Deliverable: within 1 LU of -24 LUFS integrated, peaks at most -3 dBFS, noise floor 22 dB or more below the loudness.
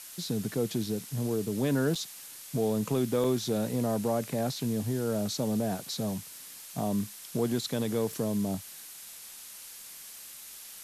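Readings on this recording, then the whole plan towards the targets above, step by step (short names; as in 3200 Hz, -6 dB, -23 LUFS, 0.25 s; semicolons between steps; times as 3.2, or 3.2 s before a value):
dropouts 2; longest dropout 4.7 ms; noise floor -47 dBFS; noise floor target -53 dBFS; loudness -31.0 LUFS; peak -17.0 dBFS; loudness target -24.0 LUFS
-> interpolate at 1.95/3.24, 4.7 ms; noise print and reduce 6 dB; gain +7 dB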